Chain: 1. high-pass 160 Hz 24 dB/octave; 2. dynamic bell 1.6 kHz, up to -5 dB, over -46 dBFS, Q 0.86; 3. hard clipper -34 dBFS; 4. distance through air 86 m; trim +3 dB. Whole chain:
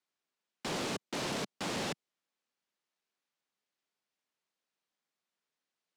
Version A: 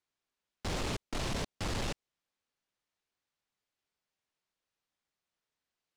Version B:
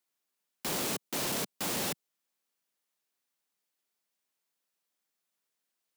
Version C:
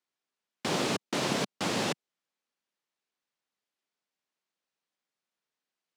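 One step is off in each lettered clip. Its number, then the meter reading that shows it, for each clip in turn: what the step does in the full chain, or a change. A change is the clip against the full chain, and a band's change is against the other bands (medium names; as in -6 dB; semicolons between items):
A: 1, 125 Hz band +8.0 dB; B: 4, 8 kHz band +8.0 dB; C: 3, distortion -7 dB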